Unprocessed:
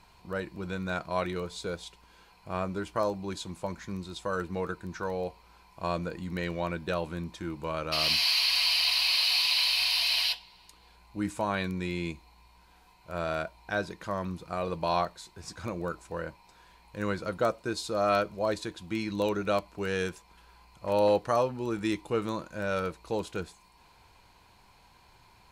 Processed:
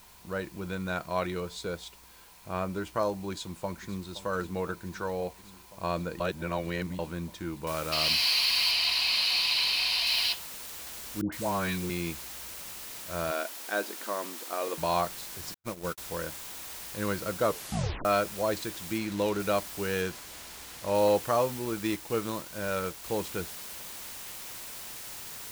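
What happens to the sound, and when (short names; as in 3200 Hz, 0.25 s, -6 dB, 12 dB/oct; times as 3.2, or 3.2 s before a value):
3.3–4.09 echo throw 0.52 s, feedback 85%, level -15.5 dB
6.2–6.99 reverse
7.67 noise floor step -56 dB -42 dB
8.71–10.07 high shelf 8600 Hz -6.5 dB
11.21–11.9 dispersion highs, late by 0.114 s, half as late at 840 Hz
13.31–14.78 brick-wall FIR high-pass 210 Hz
15.54–15.98 gate -34 dBFS, range -56 dB
17.44 tape stop 0.61 s
18.98–19.4 backlash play -36 dBFS
20.01–20.95 high shelf 10000 Hz -7.5 dB
21.59–23.04 G.711 law mismatch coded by A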